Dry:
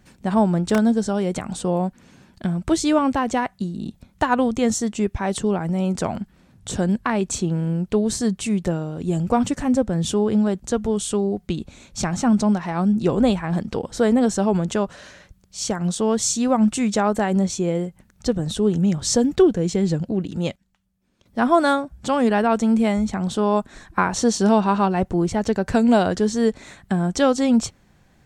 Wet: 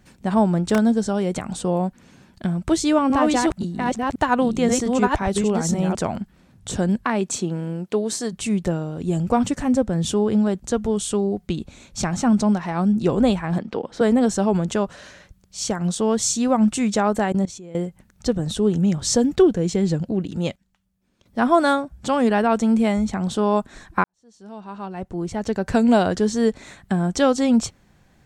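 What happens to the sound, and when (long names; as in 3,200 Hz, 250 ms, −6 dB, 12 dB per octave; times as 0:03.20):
0:02.57–0:05.95: delay that plays each chunk backwards 529 ms, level −2 dB
0:07.04–0:08.32: high-pass filter 130 Hz → 350 Hz
0:13.58–0:14.01: three-way crossover with the lows and the highs turned down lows −13 dB, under 190 Hz, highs −16 dB, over 4,300 Hz
0:17.32–0:17.75: output level in coarse steps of 19 dB
0:24.04–0:25.76: fade in quadratic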